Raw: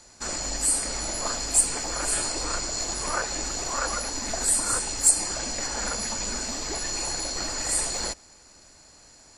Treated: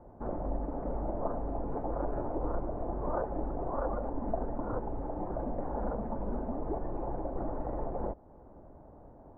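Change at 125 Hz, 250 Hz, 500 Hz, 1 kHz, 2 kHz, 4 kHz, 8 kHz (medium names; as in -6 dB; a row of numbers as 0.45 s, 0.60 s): +2.0 dB, +2.0 dB, +1.5 dB, -4.0 dB, -22.0 dB, under -40 dB, under -40 dB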